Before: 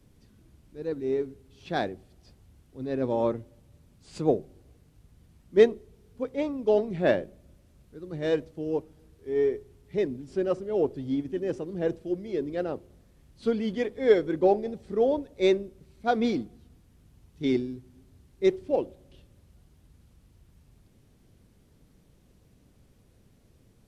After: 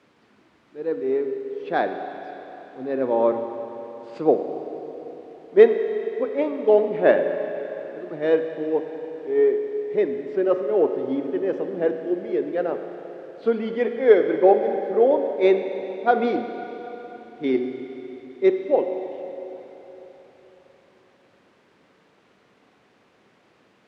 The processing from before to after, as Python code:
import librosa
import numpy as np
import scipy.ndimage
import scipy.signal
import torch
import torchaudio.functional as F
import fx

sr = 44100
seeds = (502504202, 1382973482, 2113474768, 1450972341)

p1 = fx.quant_dither(x, sr, seeds[0], bits=8, dither='triangular')
p2 = x + (p1 * librosa.db_to_amplitude(-11.0))
p3 = fx.bandpass_edges(p2, sr, low_hz=340.0, high_hz=2100.0)
p4 = fx.rev_schroeder(p3, sr, rt60_s=3.9, comb_ms=31, drr_db=6.5)
y = p4 * librosa.db_to_amplitude(5.0)